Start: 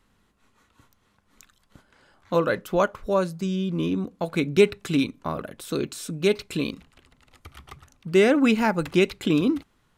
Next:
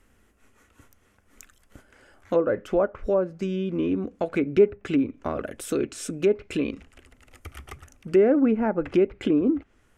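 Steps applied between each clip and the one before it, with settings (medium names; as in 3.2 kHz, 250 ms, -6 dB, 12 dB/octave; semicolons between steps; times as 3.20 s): low-pass that closes with the level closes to 1 kHz, closed at -18 dBFS; fifteen-band graphic EQ 160 Hz -12 dB, 1 kHz -9 dB, 4 kHz -12 dB; in parallel at +1 dB: compression, threshold -32 dBFS, peak gain reduction 17 dB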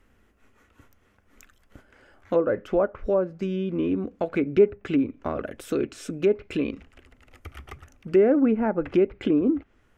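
peaking EQ 9.2 kHz -9.5 dB 1.3 oct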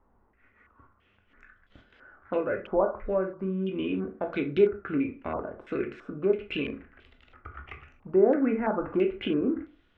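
reverberation RT60 0.35 s, pre-delay 13 ms, DRR 4 dB; step-sequenced low-pass 3 Hz 940–3600 Hz; trim -6.5 dB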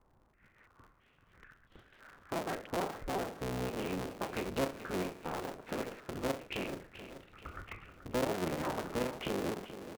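cycle switcher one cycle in 3, inverted; compression 2:1, threshold -35 dBFS, peak gain reduction 11 dB; on a send: feedback delay 431 ms, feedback 48%, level -12 dB; on the sum: trim -3 dB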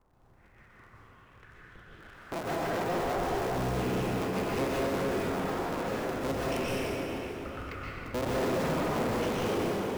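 tracing distortion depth 0.41 ms; plate-style reverb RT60 3.2 s, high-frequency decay 0.6×, pre-delay 110 ms, DRR -6.5 dB; saturation -24.5 dBFS, distortion -16 dB; trim +1 dB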